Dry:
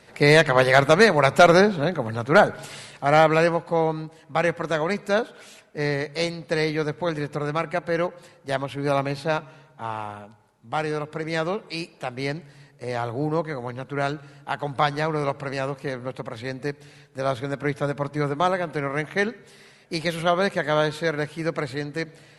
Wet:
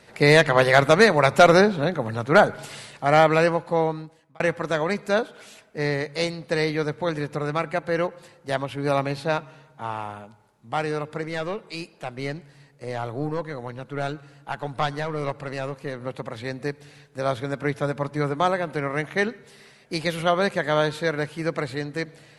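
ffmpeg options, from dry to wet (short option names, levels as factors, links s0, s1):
-filter_complex "[0:a]asettb=1/sr,asplit=3[s0][s1][s2];[s0]atrim=end=11.254[s3];[s1]atrim=start=11.25:end=16.01,asetpts=PTS-STARTPTS,afade=t=in:d=0.004:c=qsin,afade=t=out:st=4.756:d=0.004:c=qsin,aeval=exprs='(tanh(5.01*val(0)+0.55)-tanh(0.55))/5.01':c=same[s4];[s2]atrim=start=16.006[s5];[s3][s4]acrossfade=d=0.004:c1=hsin:c2=qsin[s6];[s6][s5]acrossfade=d=0.004:c1=qsin:c2=hsin,asplit=2[s7][s8];[s7]atrim=end=4.4,asetpts=PTS-STARTPTS,afade=t=out:st=3.81:d=0.59[s9];[s8]atrim=start=4.4,asetpts=PTS-STARTPTS,afade=t=in:d=0.004:c=hsin[s10];[s9][s10]concat=n=2:v=0:a=1"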